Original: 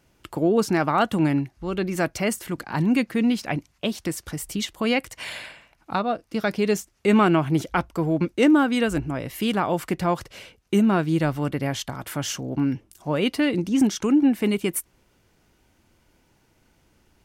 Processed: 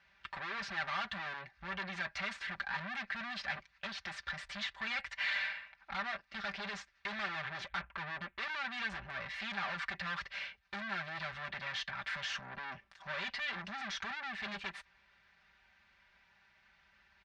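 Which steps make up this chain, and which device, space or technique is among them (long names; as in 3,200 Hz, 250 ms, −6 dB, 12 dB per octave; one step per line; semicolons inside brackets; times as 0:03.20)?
0:07.67–0:08.50: Butterworth low-pass 3,000 Hz
scooped metal amplifier (tube saturation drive 37 dB, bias 0.75; loudspeaker in its box 96–3,600 Hz, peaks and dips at 140 Hz −10 dB, 460 Hz −7 dB, 1,700 Hz +7 dB, 3,000 Hz −6 dB; guitar amp tone stack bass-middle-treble 10-0-10)
comb filter 5.1 ms, depth 71%
level +9 dB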